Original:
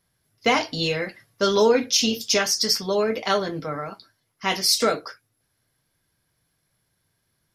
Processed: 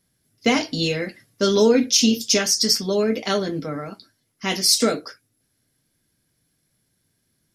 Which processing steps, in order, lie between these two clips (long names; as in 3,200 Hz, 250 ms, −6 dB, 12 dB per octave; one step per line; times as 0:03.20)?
octave-band graphic EQ 250/1,000/8,000 Hz +8/−6/+6 dB